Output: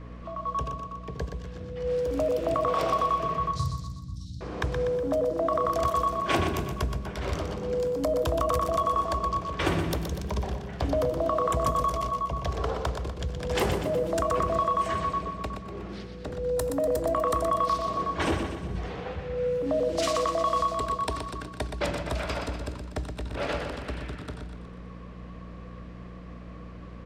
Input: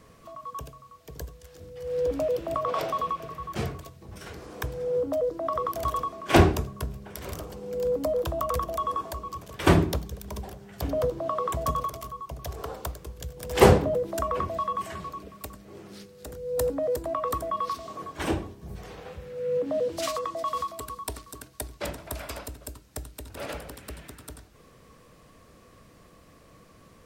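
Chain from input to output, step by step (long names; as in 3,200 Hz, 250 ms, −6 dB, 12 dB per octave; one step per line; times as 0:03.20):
low-pass that shuts in the quiet parts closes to 2,700 Hz, open at −22.5 dBFS
0:03.51–0:04.41: Chebyshev band-stop filter 150–3,900 Hz, order 5
downward compressor 10 to 1, threshold −29 dBFS, peak gain reduction 19.5 dB
in parallel at −3.5 dB: hard clipping −26 dBFS, distortion −21 dB
on the sum: mains hum 60 Hz, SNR 12 dB
on a send: repeating echo 122 ms, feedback 52%, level −7 dB
on the sum: level +1.5 dB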